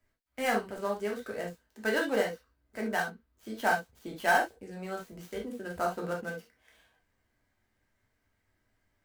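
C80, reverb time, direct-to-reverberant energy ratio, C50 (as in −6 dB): 28.0 dB, non-exponential decay, −1.0 dB, 7.5 dB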